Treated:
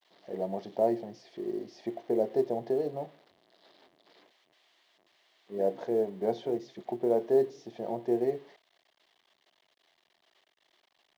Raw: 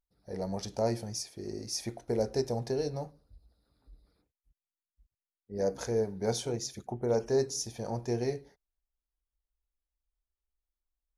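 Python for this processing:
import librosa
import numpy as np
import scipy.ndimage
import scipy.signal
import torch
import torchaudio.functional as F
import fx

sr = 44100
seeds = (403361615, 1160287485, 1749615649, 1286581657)

y = x + 0.5 * 10.0 ** (-31.5 / 20.0) * np.diff(np.sign(x), prepend=np.sign(x[:1]))
y = fx.cabinet(y, sr, low_hz=160.0, low_slope=24, high_hz=3000.0, hz=(360.0, 660.0, 1400.0, 2500.0), db=(9, 9, -9, -9))
y = fx.quant_companded(y, sr, bits=8)
y = y * 10.0 ** (-2.0 / 20.0)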